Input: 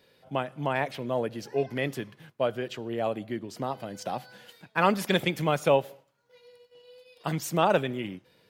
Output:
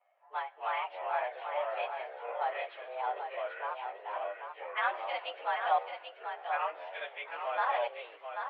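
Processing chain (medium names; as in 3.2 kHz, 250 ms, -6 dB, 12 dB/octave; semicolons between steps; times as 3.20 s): frequency axis rescaled in octaves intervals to 109%; level-controlled noise filter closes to 1.4 kHz, open at -27 dBFS; 5.78–7.41 s: slow attack 145 ms; in parallel at -7 dB: overload inside the chain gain 30.5 dB; on the sum: ever faster or slower copies 155 ms, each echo -5 st, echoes 3; on a send: delay 787 ms -7 dB; on the sum: mistuned SSB +150 Hz 460–2900 Hz; trim -5 dB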